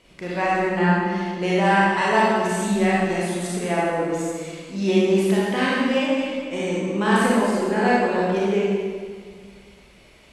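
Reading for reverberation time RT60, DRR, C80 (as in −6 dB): 1.8 s, −6.5 dB, −0.5 dB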